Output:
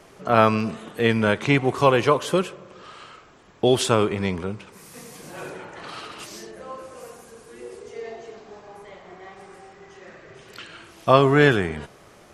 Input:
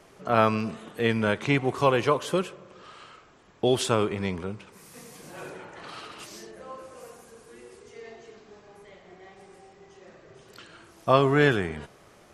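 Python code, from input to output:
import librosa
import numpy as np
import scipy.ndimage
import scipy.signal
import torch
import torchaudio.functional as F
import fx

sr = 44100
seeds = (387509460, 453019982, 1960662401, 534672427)

y = fx.peak_eq(x, sr, hz=fx.line((7.59, 450.0), (11.09, 3100.0)), db=6.5, octaves=1.2, at=(7.59, 11.09), fade=0.02)
y = y * 10.0 ** (4.5 / 20.0)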